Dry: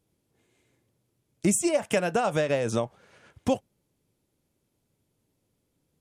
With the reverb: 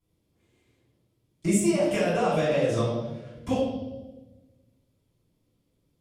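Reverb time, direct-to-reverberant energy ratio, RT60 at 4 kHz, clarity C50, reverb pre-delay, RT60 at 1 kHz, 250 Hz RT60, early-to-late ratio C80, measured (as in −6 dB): 1.2 s, −12.5 dB, 1.0 s, 1.5 dB, 3 ms, 0.95 s, 1.7 s, 4.0 dB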